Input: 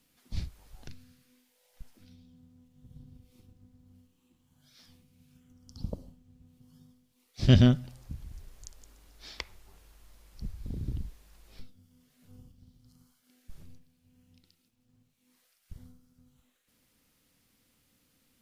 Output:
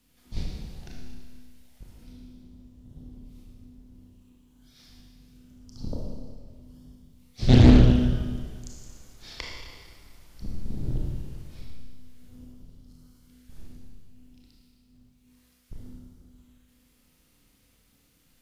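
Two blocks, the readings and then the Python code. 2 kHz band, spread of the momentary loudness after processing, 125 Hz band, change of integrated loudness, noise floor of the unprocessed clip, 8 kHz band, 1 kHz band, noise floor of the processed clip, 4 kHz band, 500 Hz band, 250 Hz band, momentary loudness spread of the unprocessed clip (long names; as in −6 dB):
+5.0 dB, 26 LU, +5.5 dB, +6.5 dB, −72 dBFS, can't be measured, +9.5 dB, −64 dBFS, +3.0 dB, +7.0 dB, +7.5 dB, 25 LU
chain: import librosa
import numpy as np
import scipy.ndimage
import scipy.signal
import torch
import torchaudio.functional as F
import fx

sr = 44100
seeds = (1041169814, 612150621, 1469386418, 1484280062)

y = fx.octave_divider(x, sr, octaves=2, level_db=3.0)
y = fx.rev_schroeder(y, sr, rt60_s=1.7, comb_ms=25, drr_db=-2.5)
y = fx.doppler_dist(y, sr, depth_ms=0.76)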